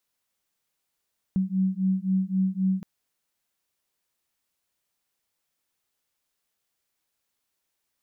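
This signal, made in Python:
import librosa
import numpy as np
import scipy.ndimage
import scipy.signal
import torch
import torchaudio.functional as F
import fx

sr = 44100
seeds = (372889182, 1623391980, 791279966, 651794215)

y = fx.two_tone_beats(sr, length_s=1.47, hz=187.0, beat_hz=3.8, level_db=-25.0)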